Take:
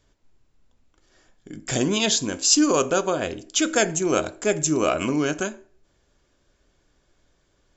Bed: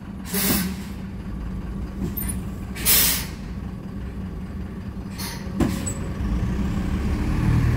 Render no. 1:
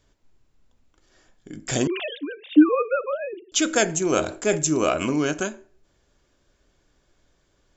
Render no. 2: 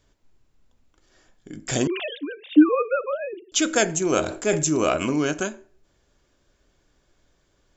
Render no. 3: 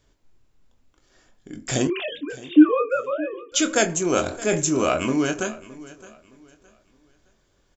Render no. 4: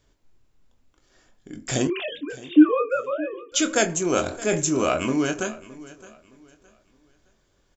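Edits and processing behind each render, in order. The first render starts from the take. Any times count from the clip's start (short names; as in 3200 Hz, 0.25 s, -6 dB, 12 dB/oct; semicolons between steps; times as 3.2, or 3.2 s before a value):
1.87–3.52 sine-wave speech; 4.14–4.58 sustainer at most 140 dB/s
4.21–4.97 transient shaper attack -1 dB, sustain +4 dB
doubler 23 ms -9 dB; feedback echo 0.616 s, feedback 30%, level -19 dB
gain -1 dB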